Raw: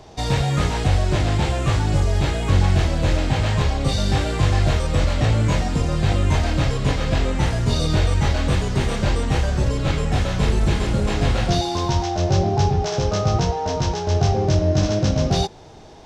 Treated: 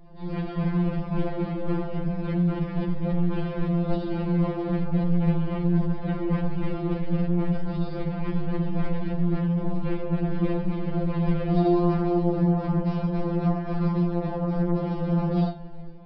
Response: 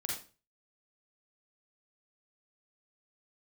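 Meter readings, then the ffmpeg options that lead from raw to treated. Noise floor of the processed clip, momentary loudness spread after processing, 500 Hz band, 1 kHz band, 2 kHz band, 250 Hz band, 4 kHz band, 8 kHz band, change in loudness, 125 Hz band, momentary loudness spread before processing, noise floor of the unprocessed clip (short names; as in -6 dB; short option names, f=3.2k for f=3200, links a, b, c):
-33 dBFS, 6 LU, -5.5 dB, -9.0 dB, -13.5 dB, +1.0 dB, under -20 dB, under -40 dB, -5.5 dB, -7.0 dB, 3 LU, -26 dBFS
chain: -filter_complex "[0:a]aemphasis=mode=reproduction:type=bsi[a];[1:a]atrim=start_sample=2205,asetrate=66150,aresample=44100[b];[a][b]afir=irnorm=-1:irlink=0,aresample=11025,asoftclip=type=tanh:threshold=-18dB,aresample=44100,highshelf=f=2k:g=-11,dynaudnorm=f=120:g=7:m=7dB,afftfilt=real='re*2.83*eq(mod(b,8),0)':imag='im*2.83*eq(mod(b,8),0)':win_size=2048:overlap=0.75,volume=-3.5dB"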